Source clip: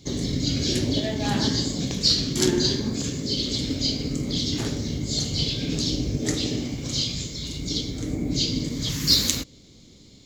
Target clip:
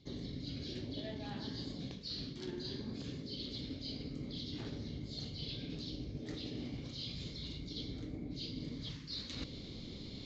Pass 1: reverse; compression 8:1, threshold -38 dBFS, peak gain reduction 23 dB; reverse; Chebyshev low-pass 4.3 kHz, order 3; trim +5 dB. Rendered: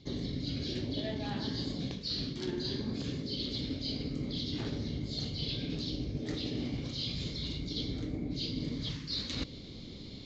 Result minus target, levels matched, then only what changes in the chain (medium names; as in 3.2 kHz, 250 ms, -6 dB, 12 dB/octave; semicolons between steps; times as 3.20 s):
compression: peak gain reduction -7 dB
change: compression 8:1, threshold -46 dBFS, peak gain reduction 30 dB